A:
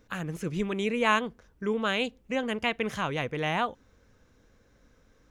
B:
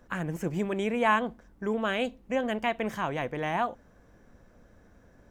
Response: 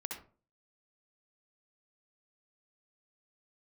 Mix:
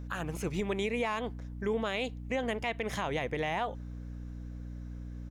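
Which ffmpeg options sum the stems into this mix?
-filter_complex "[0:a]aeval=exprs='val(0)+0.00891*(sin(2*PI*60*n/s)+sin(2*PI*2*60*n/s)/2+sin(2*PI*3*60*n/s)/3+sin(2*PI*4*60*n/s)/4+sin(2*PI*5*60*n/s)/5)':c=same,volume=1dB[a];[1:a]volume=-1,adelay=0.4,volume=-6dB[b];[a][b]amix=inputs=2:normalize=0,asoftclip=type=tanh:threshold=-9.5dB,alimiter=limit=-22.5dB:level=0:latency=1:release=116"

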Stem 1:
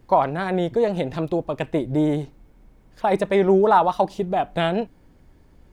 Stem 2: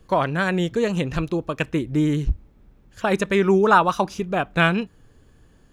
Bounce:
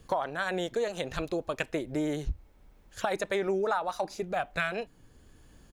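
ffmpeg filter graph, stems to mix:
-filter_complex "[0:a]volume=-8.5dB,asplit=2[a][b];[1:a]highshelf=f=2.6k:g=8,volume=-1,adelay=0.3,volume=-3.5dB[c];[b]apad=whole_len=252322[d];[c][d]sidechaincompress=threshold=-31dB:ratio=8:attack=16:release=1280[e];[a][e]amix=inputs=2:normalize=0,acompressor=threshold=-25dB:ratio=6"

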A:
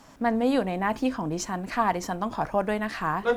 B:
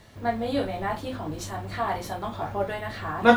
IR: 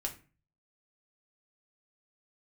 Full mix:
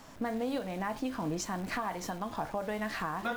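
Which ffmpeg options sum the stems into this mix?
-filter_complex "[0:a]acompressor=threshold=-27dB:ratio=6,volume=-1dB,asplit=2[a][b];[1:a]lowshelf=f=140:g=-8.5,acrusher=bits=7:dc=4:mix=0:aa=0.000001,volume=-7dB,asplit=2[c][d];[d]volume=-10dB[e];[b]apad=whole_len=148554[f];[c][f]sidechaincompress=threshold=-38dB:ratio=8:attack=16:release=249[g];[2:a]atrim=start_sample=2205[h];[e][h]afir=irnorm=-1:irlink=0[i];[a][g][i]amix=inputs=3:normalize=0,alimiter=limit=-24dB:level=0:latency=1:release=449"

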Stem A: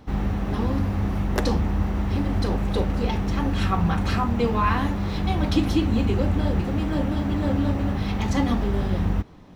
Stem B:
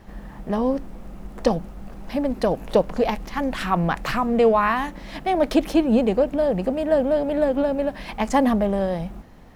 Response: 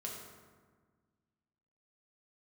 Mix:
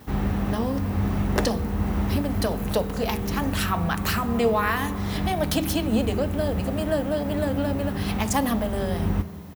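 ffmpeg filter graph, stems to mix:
-filter_complex "[0:a]volume=-0.5dB,asplit=2[a][b];[b]volume=-8.5dB[c];[1:a]aemphasis=mode=production:type=riaa,volume=-1,adelay=2.9,volume=-4dB,asplit=2[d][e];[e]apad=whole_len=421206[f];[a][f]sidechaincompress=threshold=-33dB:ratio=8:attack=38:release=478[g];[2:a]atrim=start_sample=2205[h];[c][h]afir=irnorm=-1:irlink=0[i];[g][d][i]amix=inputs=3:normalize=0,highpass=50"

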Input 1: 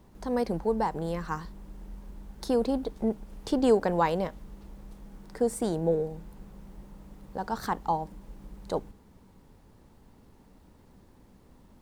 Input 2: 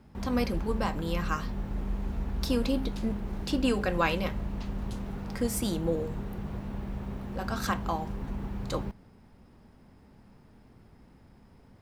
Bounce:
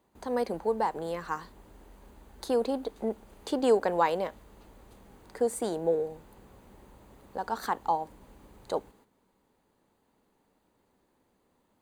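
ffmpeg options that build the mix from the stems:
-filter_complex "[0:a]highpass=330,volume=0.5dB[a];[1:a]acompressor=threshold=-39dB:ratio=2.5,volume=-15dB[b];[a][b]amix=inputs=2:normalize=0,agate=range=-9dB:threshold=-58dB:ratio=16:detection=peak,bandreject=f=5.4k:w=6"

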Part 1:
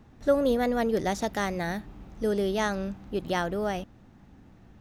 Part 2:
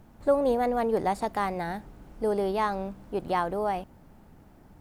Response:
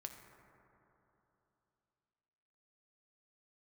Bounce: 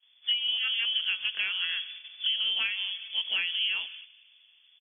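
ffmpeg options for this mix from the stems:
-filter_complex "[0:a]equalizer=f=540:t=o:w=0.4:g=9,volume=-11dB[a];[1:a]adelay=24,volume=-1dB,asplit=2[b][c];[c]volume=-4.5dB[d];[2:a]atrim=start_sample=2205[e];[d][e]afir=irnorm=-1:irlink=0[f];[a][b][f]amix=inputs=3:normalize=0,agate=range=-11dB:threshold=-43dB:ratio=16:detection=peak,lowpass=f=3k:t=q:w=0.5098,lowpass=f=3k:t=q:w=0.6013,lowpass=f=3k:t=q:w=0.9,lowpass=f=3k:t=q:w=2.563,afreqshift=-3500,acompressor=threshold=-25dB:ratio=10"

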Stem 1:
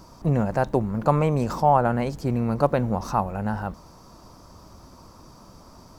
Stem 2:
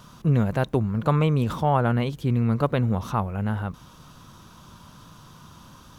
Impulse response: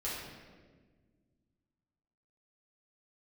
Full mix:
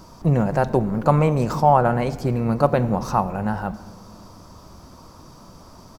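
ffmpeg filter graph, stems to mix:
-filter_complex "[0:a]volume=2dB,asplit=2[a][b];[b]volume=-15.5dB[c];[1:a]adelay=5.7,volume=-12dB[d];[2:a]atrim=start_sample=2205[e];[c][e]afir=irnorm=-1:irlink=0[f];[a][d][f]amix=inputs=3:normalize=0"

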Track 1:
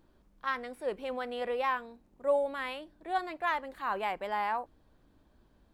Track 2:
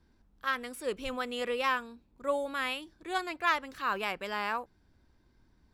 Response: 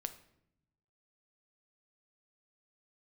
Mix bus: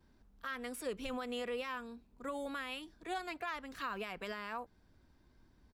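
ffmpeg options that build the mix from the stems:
-filter_complex "[0:a]volume=-10.5dB[a];[1:a]adelay=4.2,volume=-1dB[b];[a][b]amix=inputs=2:normalize=0,acrossover=split=210[c][d];[d]acompressor=threshold=-36dB:ratio=2.5[e];[c][e]amix=inputs=2:normalize=0,alimiter=level_in=6dB:limit=-24dB:level=0:latency=1:release=63,volume=-6dB"

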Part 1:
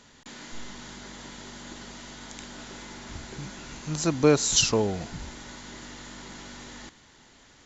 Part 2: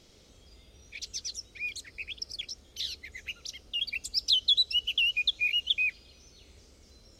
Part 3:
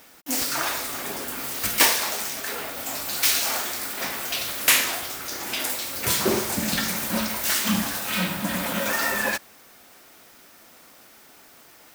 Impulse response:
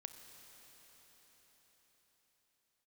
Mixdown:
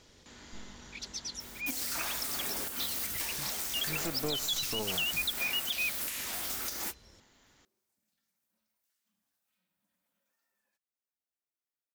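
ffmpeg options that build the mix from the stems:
-filter_complex "[0:a]tremolo=f=200:d=0.4,aeval=exprs='0.376*(cos(1*acos(clip(val(0)/0.376,-1,1)))-cos(1*PI/2))+0.0531*(cos(6*acos(clip(val(0)/0.376,-1,1)))-cos(6*PI/2))':c=same,volume=-7.5dB,asplit=2[a][b];[1:a]volume=-3dB[c];[2:a]highshelf=f=3.8k:g=7.5,acompressor=threshold=-28dB:ratio=6,adelay=1400,volume=-4dB[d];[b]apad=whole_len=588561[e];[d][e]sidechaingate=range=-48dB:threshold=-53dB:ratio=16:detection=peak[f];[a][c][f]amix=inputs=3:normalize=0,alimiter=limit=-22.5dB:level=0:latency=1:release=135"

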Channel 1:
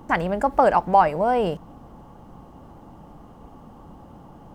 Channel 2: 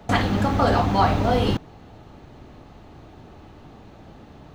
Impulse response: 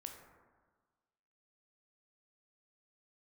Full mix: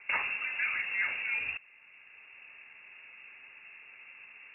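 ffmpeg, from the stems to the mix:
-filter_complex "[0:a]highpass=260,alimiter=limit=-15.5dB:level=0:latency=1:release=182,lowpass=1k,volume=-17.5dB,asplit=2[a][b];[1:a]highpass=180,volume=-1,volume=-4.5dB[c];[b]apad=whole_len=200442[d];[c][d]sidechaincompress=threshold=-46dB:ratio=8:attack=16:release=1490[e];[a][e]amix=inputs=2:normalize=0,lowpass=f=2.5k:t=q:w=0.5098,lowpass=f=2.5k:t=q:w=0.6013,lowpass=f=2.5k:t=q:w=0.9,lowpass=f=2.5k:t=q:w=2.563,afreqshift=-2900"

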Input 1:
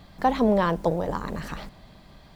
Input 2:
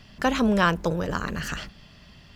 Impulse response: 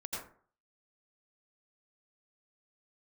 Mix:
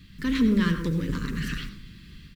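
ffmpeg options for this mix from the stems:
-filter_complex "[0:a]volume=-3.5dB,asplit=2[a][b];[b]volume=-4dB[c];[1:a]lowpass=f=3.3k:w=0.5412,lowpass=f=3.3k:w=1.3066,alimiter=limit=-19dB:level=0:latency=1,asoftclip=type=hard:threshold=-29dB,adelay=7.2,volume=-4.5dB[d];[2:a]atrim=start_sample=2205[e];[c][e]afir=irnorm=-1:irlink=0[f];[a][d][f]amix=inputs=3:normalize=0,asuperstop=centerf=720:order=4:qfactor=0.5,dynaudnorm=f=150:g=3:m=4dB"

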